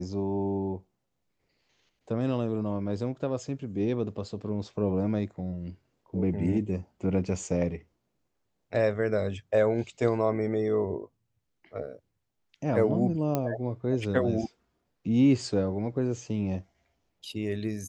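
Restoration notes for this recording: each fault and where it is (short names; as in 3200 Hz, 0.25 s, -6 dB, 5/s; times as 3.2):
13.35 pop -14 dBFS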